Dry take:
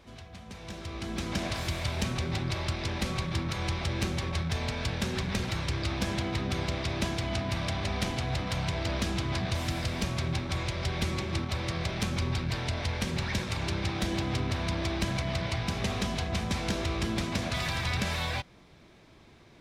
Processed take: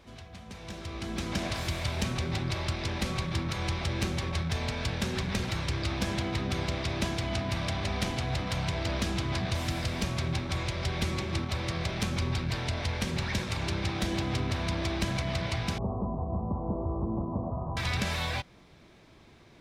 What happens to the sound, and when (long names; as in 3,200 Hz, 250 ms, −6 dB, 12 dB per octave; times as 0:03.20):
0:15.78–0:17.77: Butterworth low-pass 1,100 Hz 72 dB per octave